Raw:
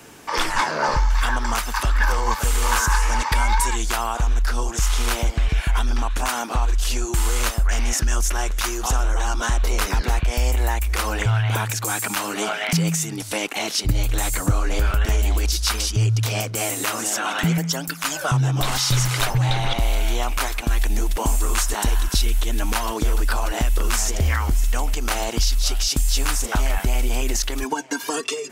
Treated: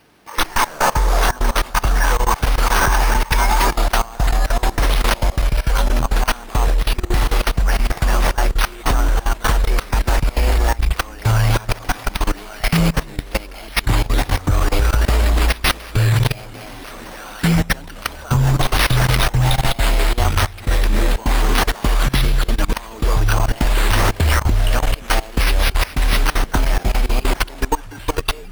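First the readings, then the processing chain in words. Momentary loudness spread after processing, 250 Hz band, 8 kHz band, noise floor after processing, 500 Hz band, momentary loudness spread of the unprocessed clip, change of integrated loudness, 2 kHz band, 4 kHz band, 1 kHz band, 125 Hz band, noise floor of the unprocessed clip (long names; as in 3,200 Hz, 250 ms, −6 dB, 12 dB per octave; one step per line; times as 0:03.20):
7 LU, +4.0 dB, −3.5 dB, −34 dBFS, +4.5 dB, 4 LU, +3.5 dB, +4.0 dB, +2.5 dB, +4.0 dB, +4.0 dB, −32 dBFS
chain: bad sample-rate conversion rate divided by 6×, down none, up hold
delay with pitch and tempo change per echo 88 ms, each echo −4 semitones, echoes 3, each echo −6 dB
output level in coarse steps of 20 dB
level +6.5 dB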